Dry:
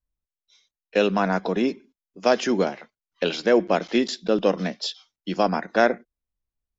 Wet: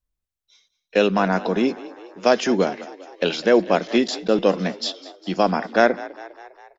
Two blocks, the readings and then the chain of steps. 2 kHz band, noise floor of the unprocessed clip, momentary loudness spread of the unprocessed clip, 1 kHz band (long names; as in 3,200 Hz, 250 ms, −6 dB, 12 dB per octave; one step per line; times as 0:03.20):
+2.5 dB, below −85 dBFS, 10 LU, +2.5 dB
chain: echo with shifted repeats 202 ms, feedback 59%, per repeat +45 Hz, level −18 dB
level +2.5 dB